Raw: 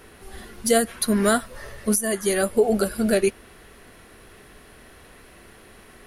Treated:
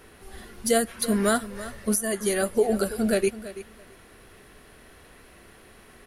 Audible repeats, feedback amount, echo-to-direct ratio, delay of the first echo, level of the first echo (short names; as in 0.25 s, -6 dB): 2, 16%, -15.0 dB, 0.332 s, -15.0 dB